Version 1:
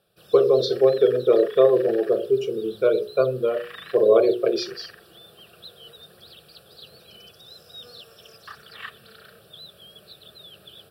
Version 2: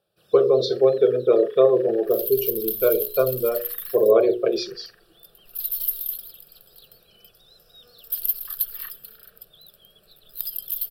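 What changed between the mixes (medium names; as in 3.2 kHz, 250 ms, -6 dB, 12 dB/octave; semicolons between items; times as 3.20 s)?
first sound -8.5 dB; second sound: unmuted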